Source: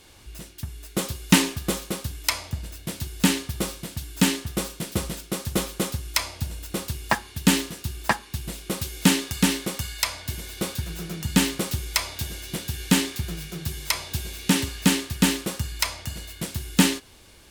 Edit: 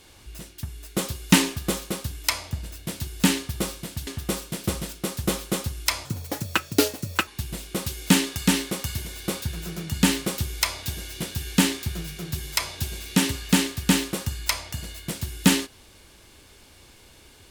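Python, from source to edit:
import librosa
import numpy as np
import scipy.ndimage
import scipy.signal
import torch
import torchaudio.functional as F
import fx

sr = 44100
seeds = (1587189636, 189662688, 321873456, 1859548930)

y = fx.edit(x, sr, fx.cut(start_s=4.07, length_s=0.28),
    fx.speed_span(start_s=6.33, length_s=1.89, speed=1.55),
    fx.cut(start_s=9.9, length_s=0.38), tone=tone)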